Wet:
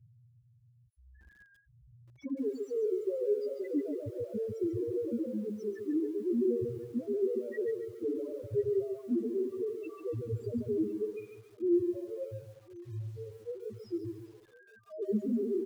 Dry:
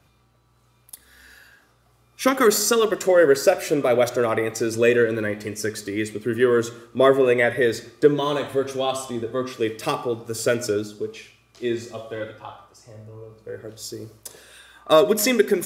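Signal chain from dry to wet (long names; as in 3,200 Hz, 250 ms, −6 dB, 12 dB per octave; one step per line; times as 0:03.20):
loose part that buzzes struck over −25 dBFS, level −23 dBFS
hum removal 391.1 Hz, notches 3
in parallel at −3 dB: compressor whose output falls as the input rises −24 dBFS, ratio −1
on the sum: brickwall limiter −14 dBFS, peak gain reduction 11 dB
flanger 0.24 Hz, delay 8.3 ms, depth 9.1 ms, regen +53%
on a send: feedback echo with a band-pass in the loop 349 ms, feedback 40%, band-pass 830 Hz, level −17 dB
on the sum: spectral peaks only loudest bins 1
Butterworth band-reject 840 Hz, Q 0.63
head-to-tape spacing loss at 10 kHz 39 dB
single-tap delay 1,056 ms −21.5 dB
feedback echo at a low word length 141 ms, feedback 35%, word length 11 bits, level −7 dB
level +6.5 dB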